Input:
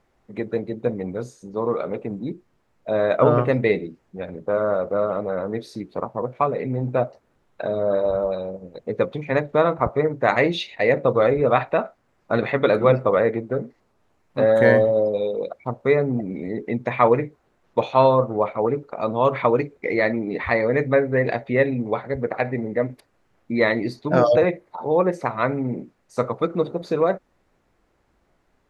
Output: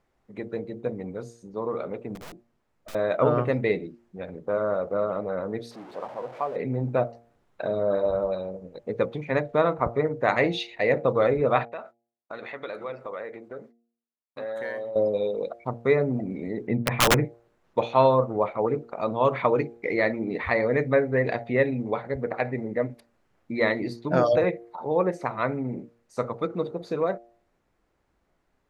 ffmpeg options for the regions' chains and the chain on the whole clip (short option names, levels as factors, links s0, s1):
-filter_complex "[0:a]asettb=1/sr,asplit=3[s0][s1][s2];[s0]atrim=end=2.154[s3];[s1]atrim=start=2.15:end=2.95,asetpts=PTS-STARTPTS,afade=t=in:d=0.004:c=qsin,afade=t=out:st=0.796:d=0.004:c=qsin,aeval=exprs='(tanh(28.2*val(0)+0.4)-tanh(0.4))/28.2':c=same,aeval=exprs='(mod(35.5*val(0)+1,2)-1)/35.5':c=same[s4];[s2]atrim=start=2.946[s5];[s3][s4]acrossfade=d=0.004:c1=hsin:c2=qsin[s6];[s6][s5]acrossfade=d=0.004:c1=qsin:c2=hsin,asettb=1/sr,asplit=3[s7][s8][s9];[s7]atrim=end=5.714[s10];[s8]atrim=start=5.71:end=6.56,asetpts=PTS-STARTPTS,afade=t=in:d=0.004:c=qsin,afade=t=out:st=0.846:d=0.004:c=qsin,aeval=exprs='val(0)+0.5*0.0562*sgn(val(0))':c=same,bandpass=f=710:t=q:w=1.5,equalizer=f=660:t=o:w=2.4:g=-4.5[s11];[s9]atrim=start=6.556[s12];[s10][s11]acrossfade=d=0.004:c1=hsin:c2=qsin[s13];[s13][s12]acrossfade=d=0.004:c1=qsin:c2=hsin,asettb=1/sr,asplit=3[s14][s15][s16];[s14]atrim=end=11.654[s17];[s15]atrim=start=11.65:end=14.96,asetpts=PTS-STARTPTS,afade=t=in:d=0.004:c=qsin,afade=t=out:st=3.306:d=0.004:c=qsin,agate=range=0.0224:threshold=0.0126:ratio=3:release=100:detection=peak,highpass=f=690:p=1,acompressor=threshold=0.0178:ratio=2:attack=3.2:release=140:knee=1:detection=peak[s18];[s16]atrim=start=14.956[s19];[s17][s18]acrossfade=d=0.004:c1=hsin:c2=qsin[s20];[s20][s19]acrossfade=d=0.004:c1=qsin:c2=hsin,asettb=1/sr,asplit=3[s21][s22][s23];[s21]atrim=end=16.674[s24];[s22]atrim=start=16.67:end=17.25,asetpts=PTS-STARTPTS,afade=t=in:d=0.004:c=qsin,afade=t=out:st=0.576:d=0.004:c=qsin,bass=f=250:g=8,treble=f=4000:g=-14,aeval=exprs='(mod(2.82*val(0)+1,2)-1)/2.82':c=same[s25];[s23]atrim=start=17.246[s26];[s24][s25]acrossfade=d=0.004:c1=hsin:c2=qsin[s27];[s27][s26]acrossfade=d=0.004:c1=qsin:c2=hsin,bandreject=f=117.1:t=h:w=4,bandreject=f=234.2:t=h:w=4,bandreject=f=351.3:t=h:w=4,bandreject=f=468.4:t=h:w=4,bandreject=f=585.5:t=h:w=4,bandreject=f=702.6:t=h:w=4,bandreject=f=819.7:t=h:w=4,dynaudnorm=f=190:g=31:m=3.76,volume=0.501"